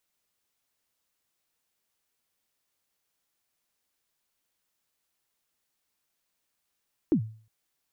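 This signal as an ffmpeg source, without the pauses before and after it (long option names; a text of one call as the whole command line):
ffmpeg -f lavfi -i "aevalsrc='0.158*pow(10,-3*t/0.44)*sin(2*PI*(360*0.088/log(110/360)*(exp(log(110/360)*min(t,0.088)/0.088)-1)+110*max(t-0.088,0)))':duration=0.36:sample_rate=44100" out.wav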